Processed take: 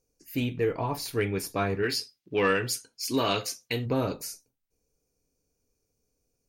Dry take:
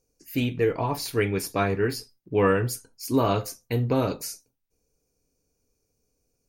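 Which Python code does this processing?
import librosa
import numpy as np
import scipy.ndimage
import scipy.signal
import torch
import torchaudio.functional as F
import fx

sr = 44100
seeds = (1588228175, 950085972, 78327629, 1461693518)

y = fx.weighting(x, sr, curve='D', at=(1.82, 3.85), fade=0.02)
y = 10.0 ** (-10.5 / 20.0) * np.tanh(y / 10.0 ** (-10.5 / 20.0))
y = y * librosa.db_to_amplitude(-3.0)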